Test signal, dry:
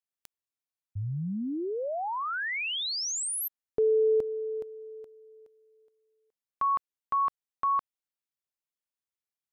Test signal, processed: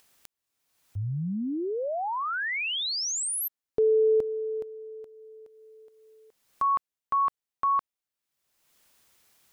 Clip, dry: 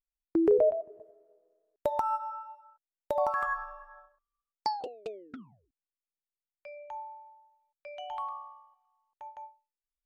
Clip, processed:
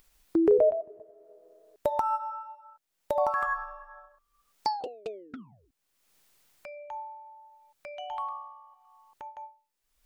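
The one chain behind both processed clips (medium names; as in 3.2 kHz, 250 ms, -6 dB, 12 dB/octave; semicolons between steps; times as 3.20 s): upward compressor, threshold -45 dBFS; trim +2 dB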